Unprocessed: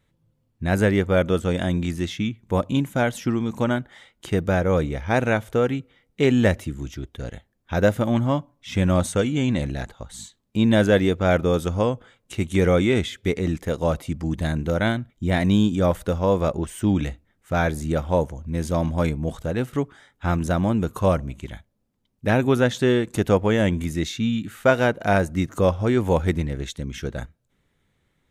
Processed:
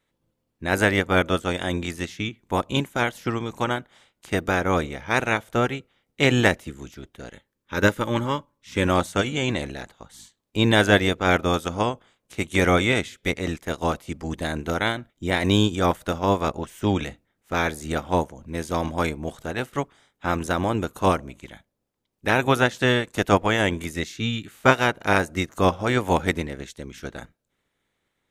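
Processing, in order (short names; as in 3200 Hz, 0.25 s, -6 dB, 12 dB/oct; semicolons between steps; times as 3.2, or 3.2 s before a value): spectral limiter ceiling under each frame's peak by 15 dB; 7.32–8.86 Butterworth band-stop 710 Hz, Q 3.5; upward expander 1.5:1, over -31 dBFS; gain +1.5 dB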